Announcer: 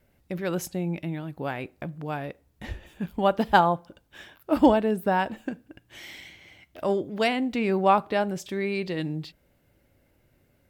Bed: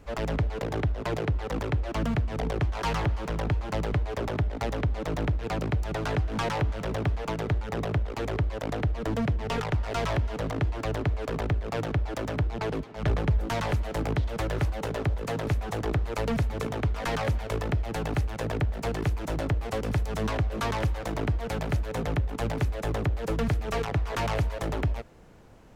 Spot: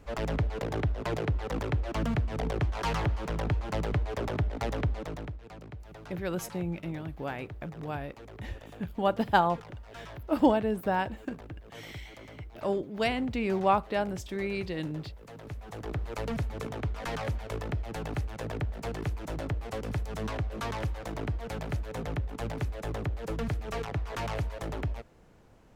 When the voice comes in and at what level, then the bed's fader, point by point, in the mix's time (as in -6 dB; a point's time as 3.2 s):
5.80 s, -4.5 dB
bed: 4.89 s -2 dB
5.47 s -17 dB
15.31 s -17 dB
16.06 s -5.5 dB